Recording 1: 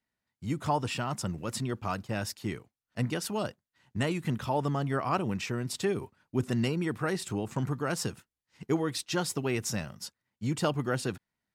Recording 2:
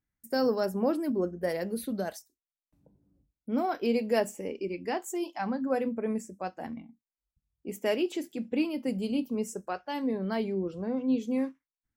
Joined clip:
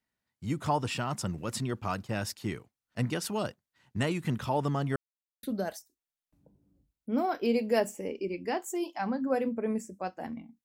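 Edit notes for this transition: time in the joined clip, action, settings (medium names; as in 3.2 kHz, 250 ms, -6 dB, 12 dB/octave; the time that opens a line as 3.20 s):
recording 1
4.96–5.43 s: mute
5.43 s: go over to recording 2 from 1.83 s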